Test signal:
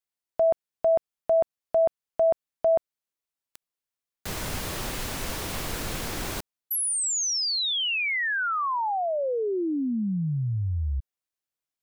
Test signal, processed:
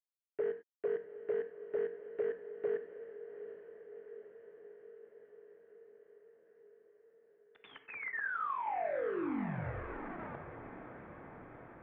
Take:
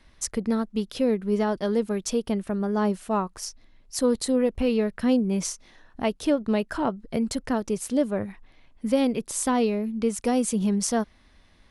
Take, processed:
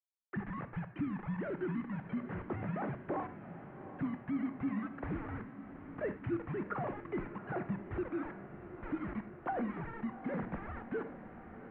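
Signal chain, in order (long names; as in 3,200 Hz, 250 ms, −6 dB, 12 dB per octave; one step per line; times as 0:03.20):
three sine waves on the formant tracks
downward compressor 10 to 1, threshold −35 dBFS
bit reduction 7 bits
feedback delay with all-pass diffusion 758 ms, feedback 68%, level −12 dB
reverb whose tail is shaped and stops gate 120 ms flat, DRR 9.5 dB
single-sideband voice off tune −220 Hz 360–2,200 Hz
level +1 dB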